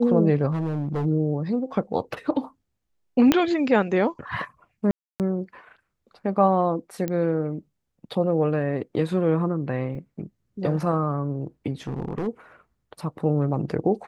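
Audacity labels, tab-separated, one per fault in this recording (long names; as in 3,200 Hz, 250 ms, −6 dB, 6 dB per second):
0.510000	1.060000	clipping −22.5 dBFS
3.320000	3.320000	click −4 dBFS
4.910000	5.200000	drop-out 288 ms
7.080000	7.080000	click −15 dBFS
9.950000	9.950000	drop-out 2.4 ms
11.870000	12.280000	clipping −24 dBFS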